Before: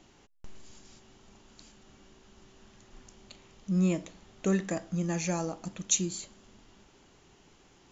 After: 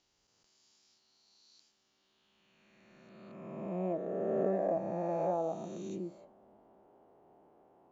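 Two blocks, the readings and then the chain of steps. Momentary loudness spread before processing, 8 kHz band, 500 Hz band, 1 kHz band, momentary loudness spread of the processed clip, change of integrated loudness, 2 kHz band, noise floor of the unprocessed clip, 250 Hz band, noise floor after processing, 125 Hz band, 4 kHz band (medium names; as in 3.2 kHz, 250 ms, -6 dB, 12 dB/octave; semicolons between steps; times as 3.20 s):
14 LU, no reading, +3.5 dB, +3.5 dB, 14 LU, -4.5 dB, -13.5 dB, -61 dBFS, -8.0 dB, -76 dBFS, -11.0 dB, under -20 dB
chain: reverse spectral sustain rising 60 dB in 2.81 s; band-pass sweep 4.9 kHz -> 670 Hz, 1.87–3.99 s; tilt shelf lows +9.5 dB, about 1.4 kHz; trim -3.5 dB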